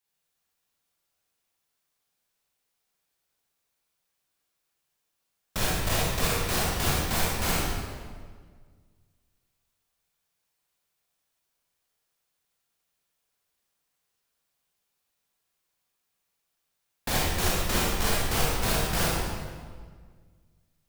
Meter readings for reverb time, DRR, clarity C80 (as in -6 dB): 1.7 s, -6.0 dB, -0.5 dB